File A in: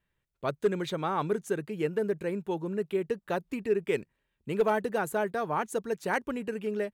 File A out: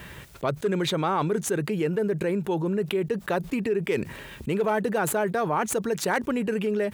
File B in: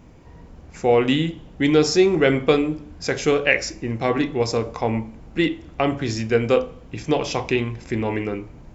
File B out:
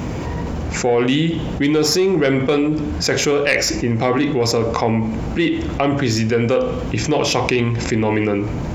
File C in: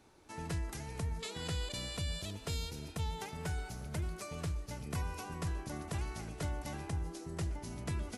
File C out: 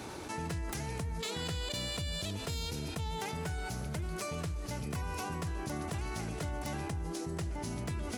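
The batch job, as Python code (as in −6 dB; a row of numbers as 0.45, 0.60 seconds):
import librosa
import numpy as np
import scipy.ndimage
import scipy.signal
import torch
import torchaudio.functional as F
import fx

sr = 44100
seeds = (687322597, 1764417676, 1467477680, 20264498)

y = fx.tracing_dist(x, sr, depth_ms=0.024)
y = scipy.signal.sosfilt(scipy.signal.butter(2, 60.0, 'highpass', fs=sr, output='sos'), y)
y = 10.0 ** (-7.0 / 20.0) * np.tanh(y / 10.0 ** (-7.0 / 20.0))
y = fx.env_flatten(y, sr, amount_pct=70)
y = y * 10.0 ** (-1.0 / 20.0)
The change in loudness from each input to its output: +4.5, +3.5, +2.5 LU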